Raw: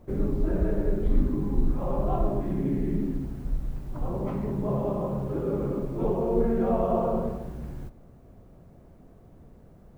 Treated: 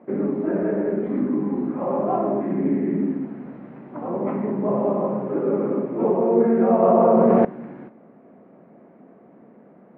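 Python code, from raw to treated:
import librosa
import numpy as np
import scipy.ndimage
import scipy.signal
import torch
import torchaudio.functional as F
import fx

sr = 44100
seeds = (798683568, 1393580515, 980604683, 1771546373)

y = scipy.signal.sosfilt(scipy.signal.cheby1(3, 1.0, [210.0, 2200.0], 'bandpass', fs=sr, output='sos'), x)
y = fx.env_flatten(y, sr, amount_pct=100, at=(6.82, 7.45))
y = y * 10.0 ** (8.0 / 20.0)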